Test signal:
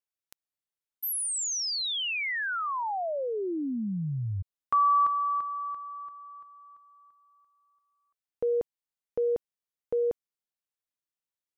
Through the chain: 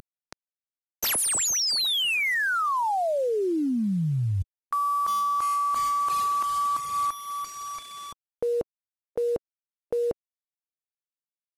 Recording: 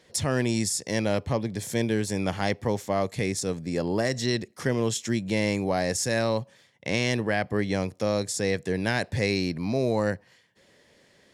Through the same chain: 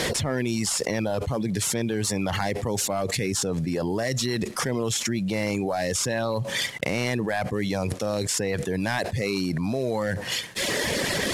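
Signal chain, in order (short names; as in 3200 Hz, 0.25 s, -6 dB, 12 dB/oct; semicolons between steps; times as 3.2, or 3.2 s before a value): CVSD 64 kbps; reverb removal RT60 0.88 s; fast leveller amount 100%; gain -3 dB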